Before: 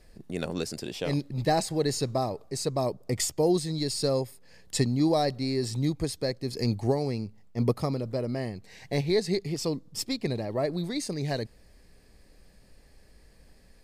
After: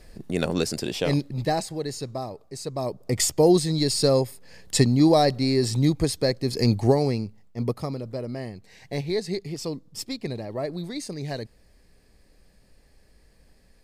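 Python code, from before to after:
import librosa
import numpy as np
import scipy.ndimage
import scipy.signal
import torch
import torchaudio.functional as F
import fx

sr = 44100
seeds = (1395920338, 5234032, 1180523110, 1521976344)

y = fx.gain(x, sr, db=fx.line((0.99, 7.0), (1.83, -4.0), (2.63, -4.0), (3.28, 6.5), (7.06, 6.5), (7.57, -1.5)))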